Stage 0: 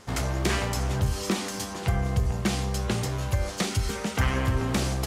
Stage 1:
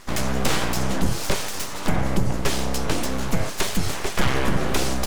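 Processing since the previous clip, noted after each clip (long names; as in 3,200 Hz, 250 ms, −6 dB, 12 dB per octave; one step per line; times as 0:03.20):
full-wave rectification
level +6.5 dB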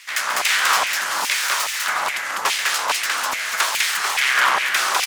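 loudspeakers that aren't time-aligned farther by 47 metres −10 dB, 69 metres −1 dB
auto-filter high-pass saw down 2.4 Hz 930–2,400 Hz
level +4 dB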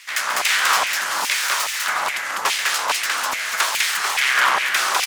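no processing that can be heard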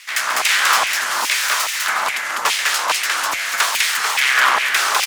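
frequency shifter +34 Hz
level +2.5 dB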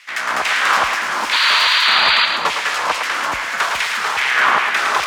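RIAA equalisation playback
sound drawn into the spectrogram noise, 0:01.32–0:02.26, 890–4,800 Hz −17 dBFS
feedback echo with a high-pass in the loop 110 ms, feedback 46%, high-pass 420 Hz, level −5.5 dB
level +1 dB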